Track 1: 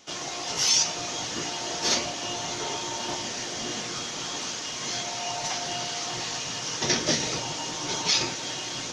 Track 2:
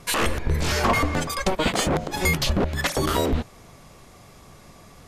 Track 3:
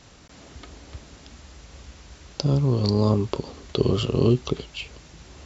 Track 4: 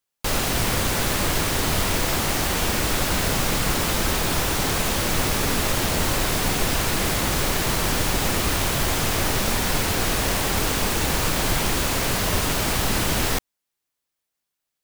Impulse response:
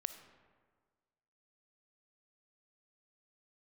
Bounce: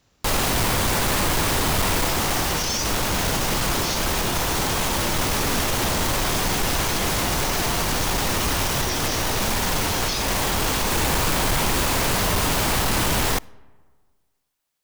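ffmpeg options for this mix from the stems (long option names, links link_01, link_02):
-filter_complex "[0:a]adelay=2000,volume=2dB[link_01];[2:a]volume=-13.5dB[link_02];[3:a]asoftclip=type=hard:threshold=-19.5dB,equalizer=frequency=940:width_type=o:width=0.65:gain=3.5,volume=2.5dB,asplit=2[link_03][link_04];[link_04]volume=-14dB[link_05];[4:a]atrim=start_sample=2205[link_06];[link_05][link_06]afir=irnorm=-1:irlink=0[link_07];[link_01][link_02][link_03][link_07]amix=inputs=4:normalize=0,alimiter=limit=-15.5dB:level=0:latency=1"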